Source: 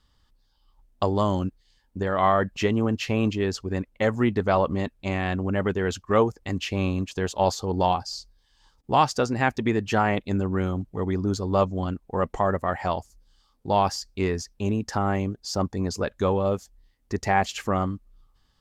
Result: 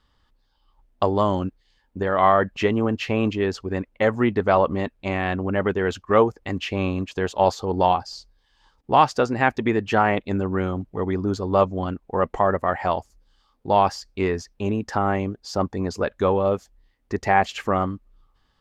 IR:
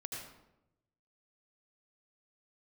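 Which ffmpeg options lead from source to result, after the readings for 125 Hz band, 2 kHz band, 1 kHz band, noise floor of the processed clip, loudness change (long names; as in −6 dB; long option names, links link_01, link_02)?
−0.5 dB, +3.5 dB, +4.0 dB, −66 dBFS, +3.0 dB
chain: -af "bass=frequency=250:gain=-5,treble=frequency=4000:gain=-10,volume=4dB"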